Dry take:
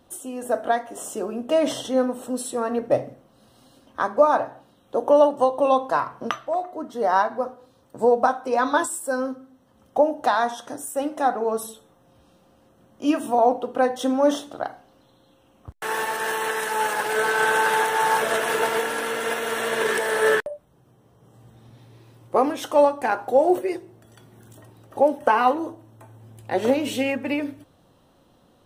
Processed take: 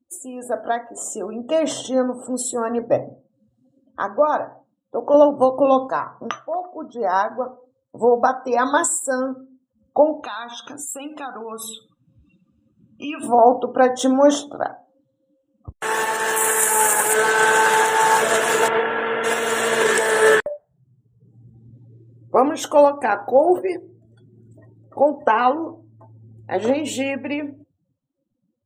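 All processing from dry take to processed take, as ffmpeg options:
-filter_complex "[0:a]asettb=1/sr,asplit=3[a][b][c];[a]atrim=end=5.144[d];[b]atrim=start=5.14:end=5.88,asetpts=PTS-STARTPTS,afade=t=in:d=0.004:c=qsin,afade=t=out:st=0.736:d=0.004:c=qsin,highpass=43,lowshelf=f=470:g=10.5[e];[c]atrim=start=5.876[f];[d][e]acrossfade=d=0.004:c1=hsin:c2=qsin[g];[g][f]acrossfade=d=0.004:c1=qsin:c2=hsin,asettb=1/sr,asplit=3[h][i][j];[h]atrim=end=10.234[k];[i]atrim=start=10.23:end=13.23,asetpts=PTS-STARTPTS,afade=t=in:d=0.004:c=qsin,afade=t=out:st=2.996:d=0.004:c=qsin,equalizer=f=2.8k:w=0.89:g=12.5,acompressor=threshold=-36dB:ratio=3:attack=3.2:release=140:knee=1:detection=peak,aecho=1:1:0.8:0.42,atrim=end_sample=132300[l];[j]atrim=start=13.226[m];[k][l]acrossfade=d=0.004:c1=hsin:c2=qsin[n];[n][m]acrossfade=d=0.004:c1=qsin:c2=hsin,asettb=1/sr,asplit=3[o][p][q];[o]atrim=end=16.364[r];[p]atrim=start=16.36:end=17.14,asetpts=PTS-STARTPTS,afade=t=in:d=0.004:c=qsin,afade=t=out:st=0.776:d=0.004:c=qsin,highshelf=f=7k:t=q:w=1.5:g=10,aeval=exprs='val(0)+0.00501*sin(2*PI*2300*n/s)':c=same[s];[q]atrim=start=17.136[t];[r][s]acrossfade=d=0.004:c1=hsin:c2=qsin[u];[u][t]acrossfade=d=0.004:c1=qsin:c2=hsin,asettb=1/sr,asplit=3[v][w][x];[v]atrim=end=18.684[y];[w]atrim=start=18.68:end=19.24,asetpts=PTS-STARTPTS,afade=t=in:d=0.004:c=qsin,afade=t=out:st=0.556:d=0.004:c=qsin,lowpass=2.7k,equalizer=f=280:t=o:w=0.29:g=-4[z];[x]atrim=start=19.236[aa];[y][z]acrossfade=d=0.004:c1=hsin:c2=qsin[ab];[ab][aa]acrossfade=d=0.004:c1=qsin:c2=hsin,afftdn=nr=34:nf=-44,equalizer=f=7.2k:t=o:w=0.31:g=13,dynaudnorm=f=240:g=17:m=11.5dB,volume=-1dB"

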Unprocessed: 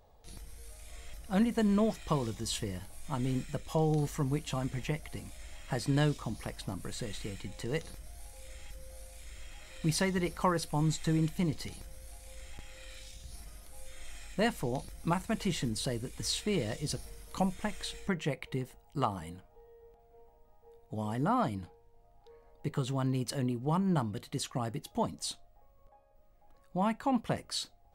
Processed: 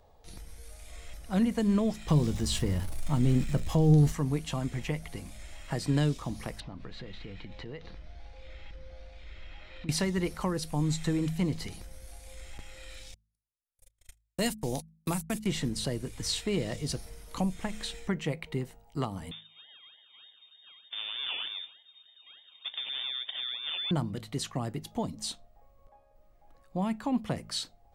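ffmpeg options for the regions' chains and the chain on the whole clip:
-filter_complex "[0:a]asettb=1/sr,asplit=3[a][b][c];[a]atrim=end=2.084[d];[b]atrim=start=2.08:end=4.12,asetpts=PTS-STARTPTS,afade=t=in:d=0.004:c=qsin,afade=t=out:st=2.036:d=0.004:c=qsin,aeval=exprs='val(0)+0.5*0.00668*sgn(val(0))':c=same,lowshelf=f=250:g=8,asplit=2[e][f];[f]adelay=13,volume=-12.5dB[g];[e][g]amix=inputs=2:normalize=0,atrim=end_sample=89964[h];[c]atrim=start=4.116[i];[d][h]acrossfade=d=0.004:c1=hsin:c2=qsin[j];[j][i]acrossfade=d=0.004:c1=qsin:c2=hsin,asettb=1/sr,asplit=3[k][l][m];[k]atrim=end=6.604[n];[l]atrim=start=6.6:end=9.89,asetpts=PTS-STARTPTS,afade=t=in:d=0.004:c=qsin,afade=t=out:st=3.286:d=0.004:c=qsin,lowpass=f=4.1k:w=0.5412,lowpass=f=4.1k:w=1.3066,acompressor=threshold=-40dB:ratio=6:attack=3.2:release=140:knee=1:detection=peak[o];[m]atrim=start=9.886[p];[n][o]acrossfade=d=0.004:c1=hsin:c2=qsin[q];[q][p]acrossfade=d=0.004:c1=qsin:c2=hsin,asettb=1/sr,asplit=3[r][s][t];[r]atrim=end=13.144[u];[s]atrim=start=13.14:end=15.46,asetpts=PTS-STARTPTS,afade=t=in:d=0.004:c=qsin,afade=t=out:st=2.316:d=0.004:c=qsin,agate=range=-59dB:threshold=-38dB:ratio=16:release=100:detection=peak,aemphasis=mode=production:type=75fm[v];[t]atrim=start=15.456[w];[u][v]acrossfade=d=0.004:c1=hsin:c2=qsin[x];[x][w]acrossfade=d=0.004:c1=qsin:c2=hsin,asettb=1/sr,asplit=3[y][z][aa];[y]atrim=end=19.314[ab];[z]atrim=start=19.31:end=23.91,asetpts=PTS-STARTPTS,afade=t=in:d=0.004:c=qsin,afade=t=out:st=4.596:d=0.004:c=qsin,acompressor=threshold=-36dB:ratio=3:attack=3.2:release=140:knee=1:detection=peak,acrusher=samples=29:mix=1:aa=0.000001:lfo=1:lforange=17.4:lforate=3.3,lowpass=f=3.1k:t=q:w=0.5098,lowpass=f=3.1k:t=q:w=0.6013,lowpass=f=3.1k:t=q:w=0.9,lowpass=f=3.1k:t=q:w=2.563,afreqshift=-3700[ac];[aa]atrim=start=23.906[ad];[ab][ac]acrossfade=d=0.004:c1=hsin:c2=qsin[ae];[ae][ad]acrossfade=d=0.004:c1=qsin:c2=hsin,highshelf=f=9.7k:g=-5,bandreject=f=53.62:t=h:w=4,bandreject=f=107.24:t=h:w=4,bandreject=f=160.86:t=h:w=4,bandreject=f=214.48:t=h:w=4,acrossover=split=430|3000[af][ag][ah];[ag]acompressor=threshold=-38dB:ratio=6[ai];[af][ai][ah]amix=inputs=3:normalize=0,volume=2.5dB"

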